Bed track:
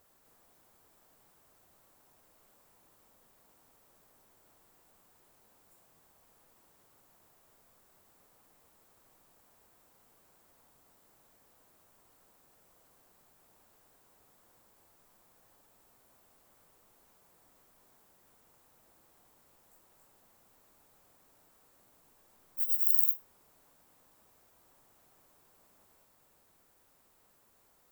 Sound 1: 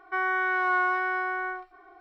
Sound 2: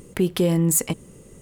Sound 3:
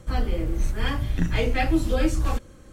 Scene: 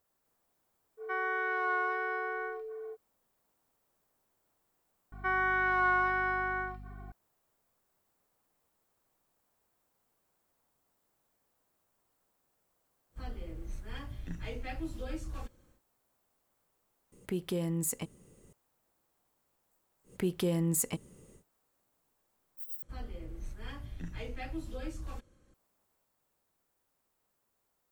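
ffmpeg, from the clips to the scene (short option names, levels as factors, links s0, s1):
-filter_complex "[1:a]asplit=2[s0][s1];[3:a]asplit=2[s2][s3];[2:a]asplit=2[s4][s5];[0:a]volume=0.251[s6];[s0]aeval=exprs='val(0)+0.0251*sin(2*PI*440*n/s)':c=same[s7];[s1]aeval=exprs='val(0)+0.00794*(sin(2*PI*50*n/s)+sin(2*PI*2*50*n/s)/2+sin(2*PI*3*50*n/s)/3+sin(2*PI*4*50*n/s)/4+sin(2*PI*5*50*n/s)/5)':c=same[s8];[s6]asplit=2[s9][s10];[s9]atrim=end=22.824[s11];[s3]atrim=end=2.72,asetpts=PTS-STARTPTS,volume=0.126[s12];[s10]atrim=start=25.536[s13];[s7]atrim=end=2,asetpts=PTS-STARTPTS,volume=0.447,afade=t=in:d=0.05,afade=t=out:st=1.95:d=0.05,adelay=970[s14];[s8]atrim=end=2,asetpts=PTS-STARTPTS,volume=0.708,afade=t=in:d=0.004:c=hsin,afade=t=out:st=1.996:d=0.004:c=hsin,adelay=5120[s15];[s2]atrim=end=2.72,asetpts=PTS-STARTPTS,volume=0.141,afade=t=in:d=0.1,afade=t=out:st=2.62:d=0.1,adelay=13090[s16];[s4]atrim=end=1.41,asetpts=PTS-STARTPTS,volume=0.211,afade=t=in:d=0.004:c=hsin,afade=t=out:st=1.406:d=0.004:c=hsin,adelay=17120[s17];[s5]atrim=end=1.41,asetpts=PTS-STARTPTS,volume=0.299,afade=t=in:d=0.1,afade=t=out:st=1.31:d=0.1,adelay=20030[s18];[s11][s12]acrossfade=d=0.004:c1=hsin:c2=hsin[s19];[s19][s13]acrossfade=d=0.004:c1=hsin:c2=hsin[s20];[s20][s14][s15][s16][s17][s18]amix=inputs=6:normalize=0"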